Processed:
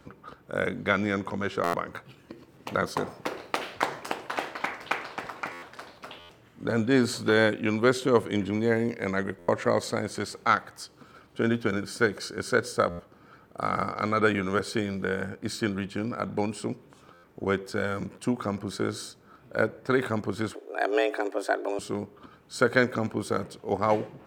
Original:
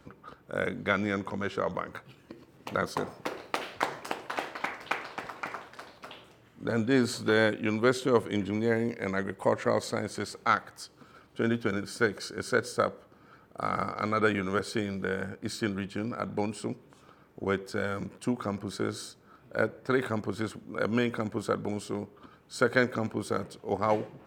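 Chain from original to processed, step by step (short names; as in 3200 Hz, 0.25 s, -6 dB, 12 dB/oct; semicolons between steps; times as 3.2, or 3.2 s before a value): 20.54–21.79 frequency shift +190 Hz; stuck buffer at 1.63/5.52/6.19/9.38/12.89/17.13, samples 512; gain +2.5 dB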